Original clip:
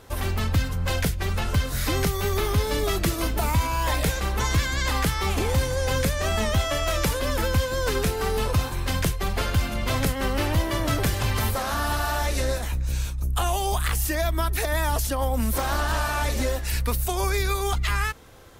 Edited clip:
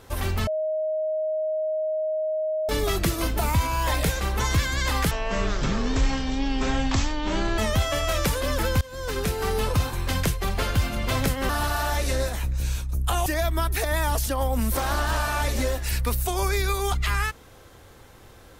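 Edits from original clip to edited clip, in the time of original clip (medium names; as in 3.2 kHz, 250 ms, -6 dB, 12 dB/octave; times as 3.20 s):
0.47–2.69 s: bleep 625 Hz -23 dBFS
5.11–6.37 s: speed 51%
7.60–8.38 s: fade in equal-power, from -21 dB
10.28–11.78 s: delete
13.55–14.07 s: delete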